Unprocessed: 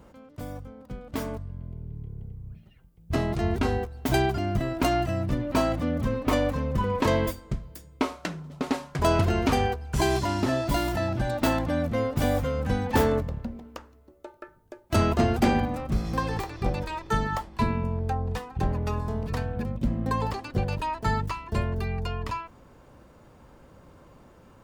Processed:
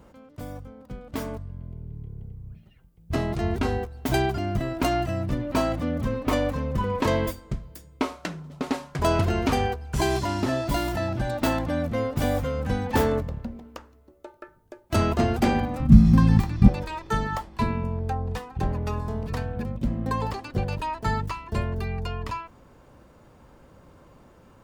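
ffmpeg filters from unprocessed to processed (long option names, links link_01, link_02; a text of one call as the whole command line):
ffmpeg -i in.wav -filter_complex "[0:a]asettb=1/sr,asplit=3[link_01][link_02][link_03];[link_01]atrim=end=15.804[link_04];[link_02]atrim=start=15.8:end=16.68,asetpts=PTS-STARTPTS,afade=type=in:duration=0.004:curve=qsin,afade=type=out:start_time=0.876:duration=0.004:curve=qsin,lowshelf=frequency=300:width_type=q:width=3:gain=11.5[link_05];[link_03]atrim=start=16.676[link_06];[link_04][link_05]acrossfade=duration=0.004:curve1=hsin:curve2=qsin[link_07];[link_07][link_06]acrossfade=duration=0.004:curve1=qsin:curve2=hsin" out.wav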